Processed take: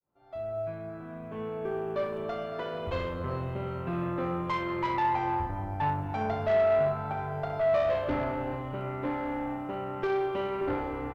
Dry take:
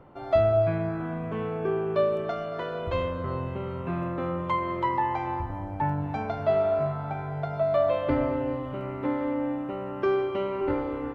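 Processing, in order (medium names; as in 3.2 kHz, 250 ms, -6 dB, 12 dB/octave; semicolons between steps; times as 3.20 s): fade-in on the opening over 3.12 s; short-mantissa float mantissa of 6-bit; valve stage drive 24 dB, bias 0.3; loudspeakers at several distances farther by 11 m -9 dB, 22 m -9 dB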